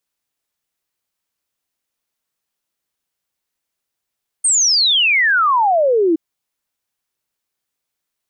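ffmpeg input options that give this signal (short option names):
-f lavfi -i "aevalsrc='0.282*clip(min(t,1.72-t)/0.01,0,1)*sin(2*PI*8900*1.72/log(310/8900)*(exp(log(310/8900)*t/1.72)-1))':d=1.72:s=44100"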